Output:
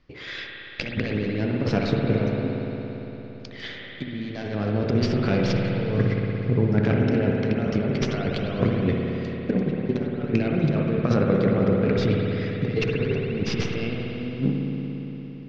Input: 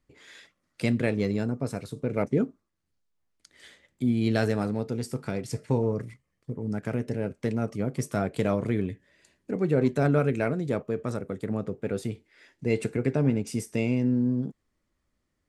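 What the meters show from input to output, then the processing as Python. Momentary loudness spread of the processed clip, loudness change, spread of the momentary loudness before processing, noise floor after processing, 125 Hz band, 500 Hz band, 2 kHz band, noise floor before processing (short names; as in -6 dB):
13 LU, +3.5 dB, 9 LU, -39 dBFS, +5.5 dB, +3.5 dB, +5.5 dB, -78 dBFS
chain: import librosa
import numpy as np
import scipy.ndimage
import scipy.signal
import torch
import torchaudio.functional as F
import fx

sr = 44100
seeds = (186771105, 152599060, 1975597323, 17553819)

y = fx.tracing_dist(x, sr, depth_ms=0.16)
y = scipy.signal.sosfilt(scipy.signal.butter(8, 5500.0, 'lowpass', fs=sr, output='sos'), y)
y = fx.peak_eq(y, sr, hz=2800.0, db=2.5, octaves=0.77)
y = fx.notch(y, sr, hz=900.0, q=16.0)
y = fx.over_compress(y, sr, threshold_db=-32.0, ratio=-0.5)
y = fx.rev_spring(y, sr, rt60_s=4.0, pass_ms=(57,), chirp_ms=50, drr_db=-1.0)
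y = y * 10.0 ** (7.0 / 20.0)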